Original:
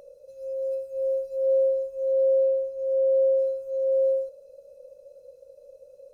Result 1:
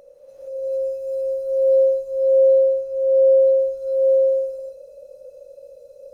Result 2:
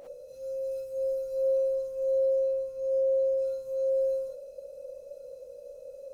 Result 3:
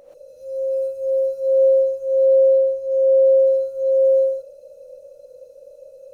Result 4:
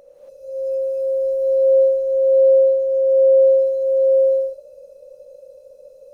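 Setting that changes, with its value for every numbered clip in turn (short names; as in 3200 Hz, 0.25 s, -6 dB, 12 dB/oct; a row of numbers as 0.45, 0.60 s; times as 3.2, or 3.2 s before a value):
non-linear reverb, gate: 490, 80, 150, 300 ms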